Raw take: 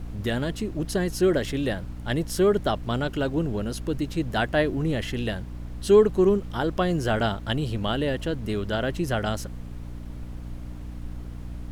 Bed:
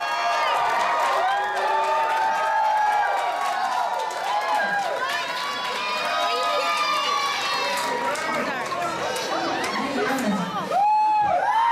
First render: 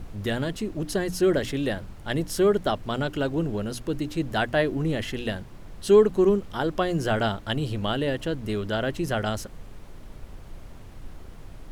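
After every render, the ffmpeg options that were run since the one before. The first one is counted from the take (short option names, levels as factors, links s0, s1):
-af "bandreject=f=60:t=h:w=6,bandreject=f=120:t=h:w=6,bandreject=f=180:t=h:w=6,bandreject=f=240:t=h:w=6,bandreject=f=300:t=h:w=6"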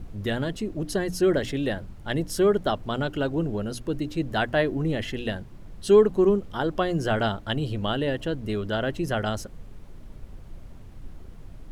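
-af "afftdn=nr=6:nf=-44"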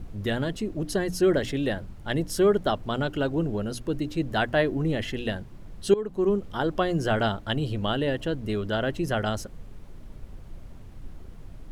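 -filter_complex "[0:a]asplit=2[s0][s1];[s0]atrim=end=5.94,asetpts=PTS-STARTPTS,afade=t=out:st=5.936:d=0.004:c=hsin:silence=0.0891251[s2];[s1]atrim=start=5.94,asetpts=PTS-STARTPTS,afade=t=in:d=0.52:silence=0.0891251[s3];[s2][s3]concat=n=2:v=0:a=1"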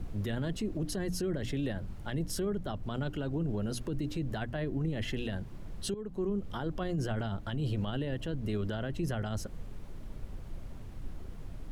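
-filter_complex "[0:a]acrossover=split=210[s0][s1];[s1]acompressor=threshold=0.02:ratio=4[s2];[s0][s2]amix=inputs=2:normalize=0,alimiter=level_in=1.19:limit=0.0631:level=0:latency=1:release=12,volume=0.841"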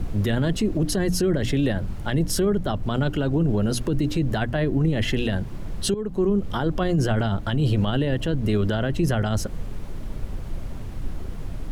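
-af "volume=3.76"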